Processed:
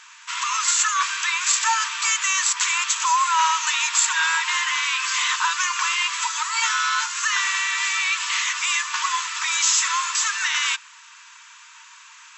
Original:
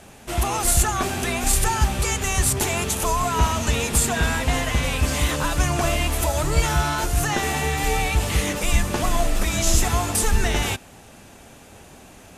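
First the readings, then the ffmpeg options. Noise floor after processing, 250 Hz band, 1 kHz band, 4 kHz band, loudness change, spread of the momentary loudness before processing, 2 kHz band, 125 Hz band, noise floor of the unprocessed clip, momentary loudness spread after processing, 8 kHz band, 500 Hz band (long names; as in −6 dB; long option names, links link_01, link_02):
−47 dBFS, below −40 dB, +2.5 dB, +5.5 dB, +1.5 dB, 4 LU, +5.5 dB, below −40 dB, −46 dBFS, 4 LU, +3.0 dB, below −40 dB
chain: -af "afftfilt=real='re*between(b*sr/4096,900,7900)':imag='im*between(b*sr/4096,900,7900)':win_size=4096:overlap=0.75,volume=5.5dB"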